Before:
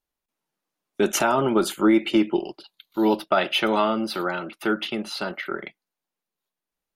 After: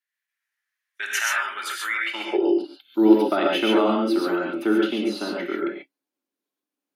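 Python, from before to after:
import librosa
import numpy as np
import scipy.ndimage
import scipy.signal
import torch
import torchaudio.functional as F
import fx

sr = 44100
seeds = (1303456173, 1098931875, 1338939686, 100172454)

y = fx.filter_sweep_highpass(x, sr, from_hz=1800.0, to_hz=280.0, start_s=1.97, end_s=2.5, q=6.8)
y = fx.rev_gated(y, sr, seeds[0], gate_ms=160, shape='rising', drr_db=-1.5)
y = y * librosa.db_to_amplitude(-5.5)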